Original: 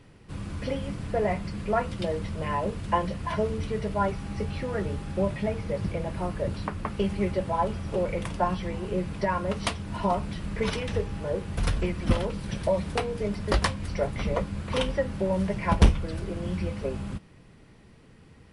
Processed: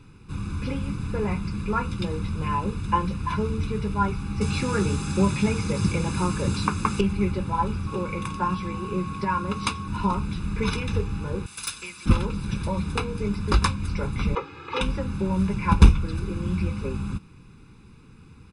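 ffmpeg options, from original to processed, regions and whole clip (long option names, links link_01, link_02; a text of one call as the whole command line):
ffmpeg -i in.wav -filter_complex "[0:a]asettb=1/sr,asplit=3[link_01][link_02][link_03];[link_01]atrim=end=4.414[link_04];[link_02]atrim=start=4.41:end=7.01,asetpts=PTS-STARTPTS,afade=type=in:duration=0.004:curve=qsin,afade=type=out:start_time=2.596:duration=0.004:curve=qsin,highpass=frequency=120:poles=1,equalizer=frequency=7300:width=0.83:gain=11.5,acontrast=35[link_05];[link_03]atrim=start=7.006[link_06];[link_04][link_05]acrossfade=duration=0.004:curve1=hsin:curve2=qsin[link_07];[link_07][link_06]acrossfade=duration=0.004:curve1=qsin:curve2=hsin,asettb=1/sr,asplit=3[link_08][link_09][link_10];[link_08]atrim=end=7.874[link_11];[link_09]atrim=start=7.87:end=9.88,asetpts=PTS-STARTPTS,afade=type=in:duration=0.004:curve=qsin,afade=type=out:start_time=2.006:duration=0.004:curve=qsin,highpass=frequency=120:poles=1,aeval=exprs='val(0)+0.00891*sin(2*PI*1100*n/s)':channel_layout=same[link_12];[link_10]atrim=start=9.876[link_13];[link_11][link_12]acrossfade=duration=0.004:curve1=hsin:curve2=qsin[link_14];[link_14][link_13]acrossfade=duration=0.004:curve1=qsin:curve2=hsin,asettb=1/sr,asplit=3[link_15][link_16][link_17];[link_15]atrim=end=11.464[link_18];[link_16]atrim=start=11.46:end=12.06,asetpts=PTS-STARTPTS,afade=type=in:duration=0.004:curve=qsin,afade=type=out:start_time=0.596:duration=0.004:curve=qsin,aderivative,aeval=exprs='0.0708*sin(PI/2*1.78*val(0)/0.0708)':channel_layout=same[link_19];[link_17]atrim=start=12.056[link_20];[link_18][link_19]acrossfade=duration=0.004:curve1=hsin:curve2=qsin[link_21];[link_21][link_20]acrossfade=duration=0.004:curve1=qsin:curve2=hsin,asettb=1/sr,asplit=3[link_22][link_23][link_24];[link_22]atrim=end=14.354[link_25];[link_23]atrim=start=14.35:end=14.81,asetpts=PTS-STARTPTS,afade=type=in:duration=0.004:curve=qsin,afade=type=out:start_time=0.456:duration=0.004:curve=qsin,highpass=340,lowpass=3300,aecho=1:1:2.4:0.93,atrim=end_sample=20286[link_26];[link_24]atrim=start=14.806[link_27];[link_25][link_26]acrossfade=duration=0.004:curve1=hsin:curve2=qsin[link_28];[link_28][link_27]acrossfade=duration=0.004:curve1=qsin:curve2=hsin,bandreject=frequency=700:width=12,aecho=1:1:0.8:0.86" out.wav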